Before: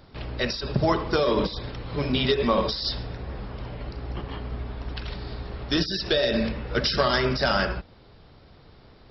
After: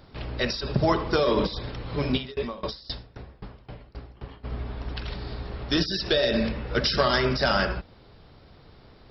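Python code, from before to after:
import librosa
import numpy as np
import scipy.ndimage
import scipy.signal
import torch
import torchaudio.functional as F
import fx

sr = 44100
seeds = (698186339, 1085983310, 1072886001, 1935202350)

y = fx.tremolo_decay(x, sr, direction='decaying', hz=3.8, depth_db=25, at=(2.16, 4.43), fade=0.02)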